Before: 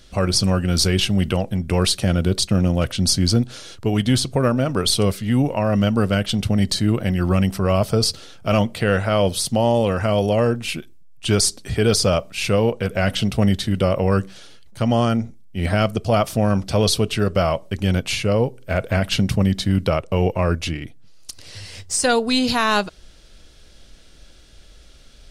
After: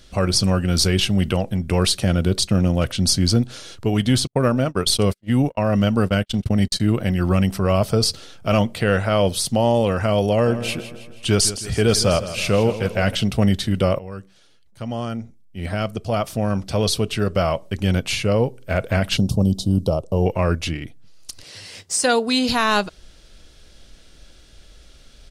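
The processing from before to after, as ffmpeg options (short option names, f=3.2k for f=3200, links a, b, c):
-filter_complex "[0:a]asettb=1/sr,asplit=3[a][b][c];[a]atrim=end=4.274[d];[b]atrim=start=4.27:end=6.8,asetpts=PTS-STARTPTS,afade=t=in:d=0.004:c=qsin,afade=t=out:st=2.526:d=0.004:c=qsin,agate=range=-46dB:threshold=-23dB:ratio=16:release=100:detection=peak[e];[c]atrim=start=6.796[f];[d][e]acrossfade=d=0.004:c1=hsin:c2=qsin[g];[g][f]acrossfade=d=0.004:c1=qsin:c2=hsin,asplit=3[h][i][j];[h]afade=t=out:st=10.46:d=0.02[k];[i]aecho=1:1:161|322|483|644|805:0.224|0.114|0.0582|0.0297|0.0151,afade=t=in:st=10.46:d=0.02,afade=t=out:st=13.14:d=0.02[l];[j]afade=t=in:st=13.14:d=0.02[m];[k][l][m]amix=inputs=3:normalize=0,asettb=1/sr,asplit=3[n][o][p];[n]atrim=end=19.174[q];[o]atrim=start=19.17:end=20.26,asetpts=PTS-STARTPTS,afade=t=in:d=0.004:c=qsin,afade=t=out:st=1.086:d=0.004:c=qsin,asuperstop=centerf=1900:order=4:qfactor=0.57[r];[p]atrim=start=20.256[s];[q][r]acrossfade=d=0.004:c1=hsin:c2=qsin[t];[t][s]acrossfade=d=0.004:c1=qsin:c2=hsin,asettb=1/sr,asplit=3[u][v][w];[u]atrim=end=21.434[x];[v]atrim=start=21.43:end=22.49,asetpts=PTS-STARTPTS,afade=t=in:d=0.004:c=qsin,afade=t=out:st=1.056:d=0.004:c=qsin,highpass=170[y];[w]atrim=start=22.486[z];[x][y]acrossfade=d=0.004:c1=hsin:c2=qsin[aa];[aa][z]acrossfade=d=0.004:c1=qsin:c2=hsin,asplit=2[ab][ac];[ab]atrim=end=13.99,asetpts=PTS-STARTPTS,afade=t=out:st=13.986:d=0.004:c=hsin:silence=0.133352[ad];[ac]atrim=start=13.99,asetpts=PTS-STARTPTS,afade=t=in:d=3.92:silence=0.133352[ae];[ad][ae]concat=n=2:v=0:a=1"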